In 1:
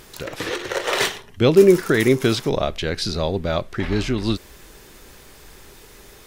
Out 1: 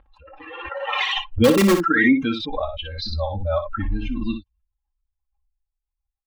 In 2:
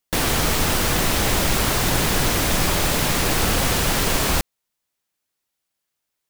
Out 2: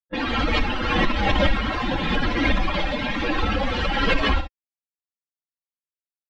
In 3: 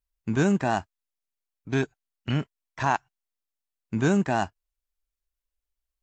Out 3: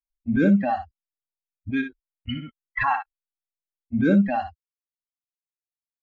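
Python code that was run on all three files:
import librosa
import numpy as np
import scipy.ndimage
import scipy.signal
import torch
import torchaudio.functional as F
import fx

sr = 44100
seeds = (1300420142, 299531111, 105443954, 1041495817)

p1 = fx.bin_expand(x, sr, power=3.0)
p2 = fx.env_lowpass(p1, sr, base_hz=1100.0, full_db=-28.0)
p3 = scipy.signal.sosfilt(scipy.signal.butter(4, 3400.0, 'lowpass', fs=sr, output='sos'), p2)
p4 = (np.mod(10.0 ** (12.5 / 20.0) * p3 + 1.0, 2.0) - 1.0) / 10.0 ** (12.5 / 20.0)
p5 = p3 + (p4 * 10.0 ** (-7.5 / 20.0))
p6 = p5 + 0.78 * np.pad(p5, (int(3.7 * sr / 1000.0), 0))[:len(p5)]
p7 = p6 + fx.room_early_taps(p6, sr, ms=(25, 60), db=(-15.0, -8.5), dry=0)
y = fx.pre_swell(p7, sr, db_per_s=34.0)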